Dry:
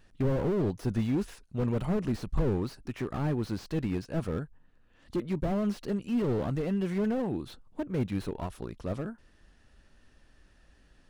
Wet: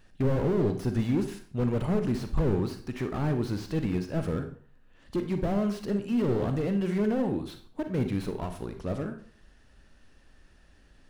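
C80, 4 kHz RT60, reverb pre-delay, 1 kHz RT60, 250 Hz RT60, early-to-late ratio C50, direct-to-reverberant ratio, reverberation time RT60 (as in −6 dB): 14.0 dB, 0.40 s, 35 ms, 0.50 s, 0.45 s, 9.5 dB, 7.0 dB, 0.50 s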